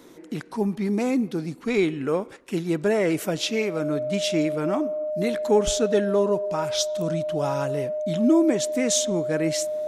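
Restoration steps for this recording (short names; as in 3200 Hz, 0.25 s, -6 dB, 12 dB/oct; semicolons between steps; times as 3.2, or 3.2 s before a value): notch 610 Hz, Q 30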